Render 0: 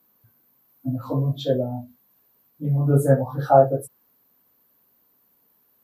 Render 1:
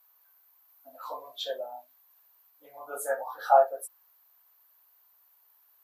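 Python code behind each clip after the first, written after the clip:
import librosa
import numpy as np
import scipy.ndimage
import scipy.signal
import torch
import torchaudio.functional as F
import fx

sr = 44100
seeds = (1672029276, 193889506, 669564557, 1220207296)

y = scipy.signal.sosfilt(scipy.signal.butter(4, 740.0, 'highpass', fs=sr, output='sos'), x)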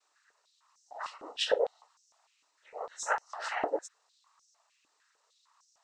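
y = fx.peak_eq(x, sr, hz=6100.0, db=8.0, octaves=1.0)
y = fx.noise_vocoder(y, sr, seeds[0], bands=12)
y = fx.filter_held_highpass(y, sr, hz=6.6, low_hz=300.0, high_hz=5800.0)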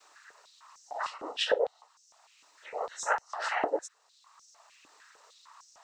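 y = fx.band_squash(x, sr, depth_pct=40)
y = y * librosa.db_to_amplitude(3.5)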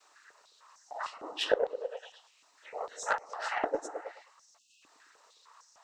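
y = fx.echo_stepped(x, sr, ms=107, hz=240.0, octaves=0.7, feedback_pct=70, wet_db=-4)
y = fx.cheby_harmonics(y, sr, harmonics=(2, 3), levels_db=(-38, -16), full_scale_db=-12.5)
y = fx.spec_erase(y, sr, start_s=4.58, length_s=0.24, low_hz=330.0, high_hz=2500.0)
y = y * librosa.db_to_amplitude(2.0)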